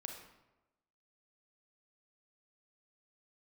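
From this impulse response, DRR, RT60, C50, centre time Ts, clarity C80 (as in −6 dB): 2.5 dB, 1.0 s, 4.5 dB, 36 ms, 7.0 dB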